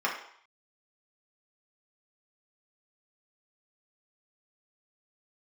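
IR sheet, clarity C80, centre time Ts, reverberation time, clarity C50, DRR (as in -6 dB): 9.5 dB, 30 ms, 0.65 s, 5.5 dB, -3.0 dB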